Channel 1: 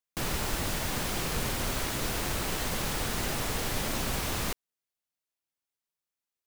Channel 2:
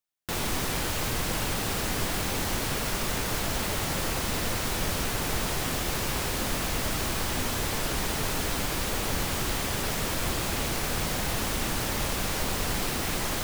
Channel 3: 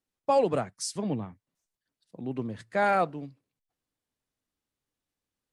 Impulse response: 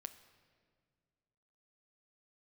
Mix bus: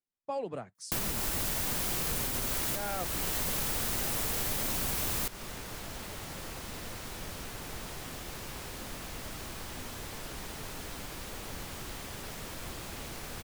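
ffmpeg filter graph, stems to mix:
-filter_complex "[0:a]highshelf=f=8k:g=11.5,adelay=750,volume=2.5dB[a];[1:a]adelay=2400,volume=-12.5dB[b];[2:a]volume=-11dB,asplit=2[c][d];[d]apad=whole_len=318345[e];[a][e]sidechaincompress=threshold=-40dB:ratio=8:attack=16:release=599[f];[f][b][c]amix=inputs=3:normalize=0,acompressor=threshold=-29dB:ratio=6"

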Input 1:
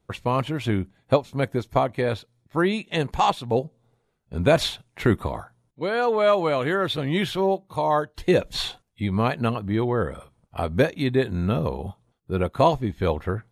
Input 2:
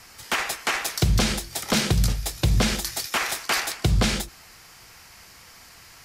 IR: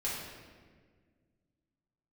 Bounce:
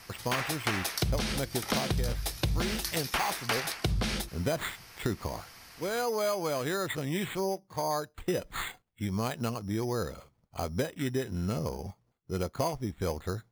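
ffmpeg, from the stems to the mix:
-filter_complex "[0:a]acrusher=samples=8:mix=1:aa=0.000001,volume=-7dB[a];[1:a]equalizer=f=7.3k:w=4.7:g=-8.5,volume=-2.5dB[b];[a][b]amix=inputs=2:normalize=0,acompressor=threshold=-26dB:ratio=6"

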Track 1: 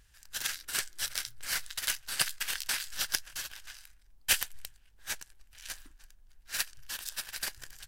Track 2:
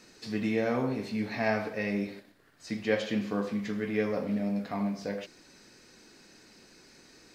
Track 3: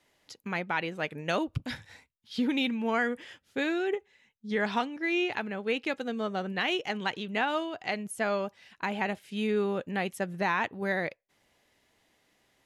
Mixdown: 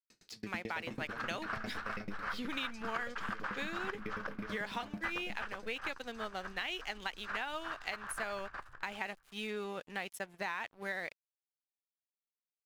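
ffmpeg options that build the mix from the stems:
-filter_complex "[0:a]lowpass=f=1.2k:t=q:w=4.3,adelay=750,volume=-1dB,asplit=2[a][b];[b]volume=-4.5dB[c];[1:a]equalizer=f=650:w=0.31:g=-7,aeval=exprs='val(0)*pow(10,-34*if(lt(mod(9.1*n/s,1),2*abs(9.1)/1000),1-mod(9.1*n/s,1)/(2*abs(9.1)/1000),(mod(9.1*n/s,1)-2*abs(9.1)/1000)/(1-2*abs(9.1)/1000))/20)':c=same,adelay=100,volume=0dB,asplit=2[d][e];[e]volume=-6dB[f];[2:a]tiltshelf=f=670:g=-6,aeval=exprs='sgn(val(0))*max(abs(val(0))-0.00531,0)':c=same,volume=-6.5dB[g];[c][f]amix=inputs=2:normalize=0,aecho=0:1:364|728|1092:1|0.19|0.0361[h];[a][d][g][h]amix=inputs=4:normalize=0,acompressor=threshold=-35dB:ratio=4"

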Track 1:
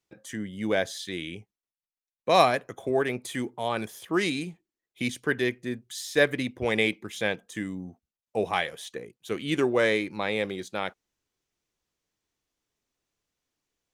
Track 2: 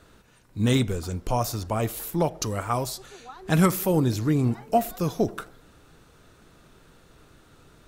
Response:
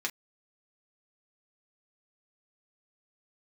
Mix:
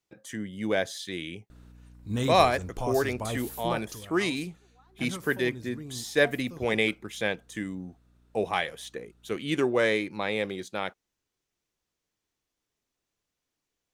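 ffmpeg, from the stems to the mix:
-filter_complex "[0:a]volume=-1dB[a];[1:a]aeval=exprs='val(0)+0.00794*(sin(2*PI*60*n/s)+sin(2*PI*2*60*n/s)/2+sin(2*PI*3*60*n/s)/3+sin(2*PI*4*60*n/s)/4+sin(2*PI*5*60*n/s)/5)':c=same,adelay=1500,volume=-7.5dB,afade=t=out:st=3.62:d=0.44:silence=0.266073[b];[a][b]amix=inputs=2:normalize=0"

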